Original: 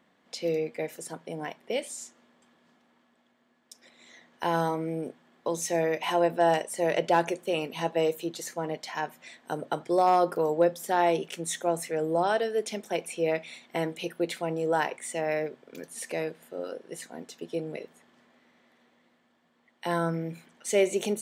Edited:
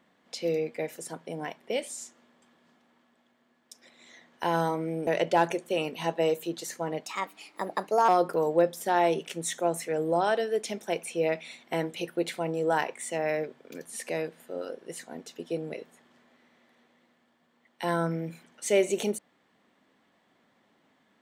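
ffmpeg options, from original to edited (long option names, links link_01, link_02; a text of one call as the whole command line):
ffmpeg -i in.wav -filter_complex "[0:a]asplit=4[link_01][link_02][link_03][link_04];[link_01]atrim=end=5.072[link_05];[link_02]atrim=start=6.838:end=8.834[link_06];[link_03]atrim=start=8.83:end=10.11,asetpts=PTS-STARTPTS,asetrate=55125,aresample=44100,atrim=end_sample=45158,asetpts=PTS-STARTPTS[link_07];[link_04]atrim=start=10.106[link_08];[link_05][link_06]acrossfade=duration=0.004:curve1=hsin:curve2=hsin[link_09];[link_09][link_07]acrossfade=duration=0.004:curve1=hsin:curve2=hsin[link_10];[link_10][link_08]acrossfade=duration=0.004:curve1=hsin:curve2=hsin" out.wav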